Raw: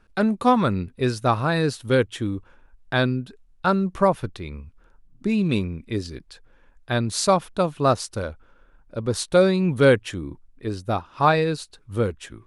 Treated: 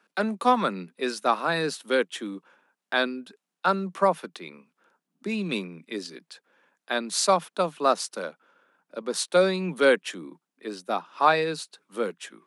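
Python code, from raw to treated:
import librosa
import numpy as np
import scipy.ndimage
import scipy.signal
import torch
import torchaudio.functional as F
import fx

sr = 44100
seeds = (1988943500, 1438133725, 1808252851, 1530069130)

y = scipy.signal.sosfilt(scipy.signal.butter(16, 160.0, 'highpass', fs=sr, output='sos'), x)
y = fx.low_shelf(y, sr, hz=320.0, db=-12.0)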